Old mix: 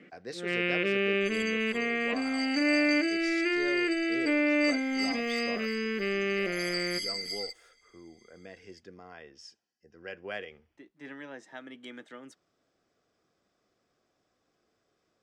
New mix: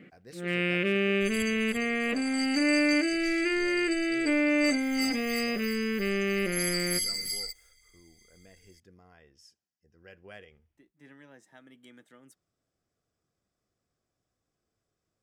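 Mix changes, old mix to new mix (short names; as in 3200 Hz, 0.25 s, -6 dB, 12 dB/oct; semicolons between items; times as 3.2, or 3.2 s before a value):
speech -10.5 dB; master: remove three-band isolator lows -13 dB, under 210 Hz, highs -22 dB, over 6500 Hz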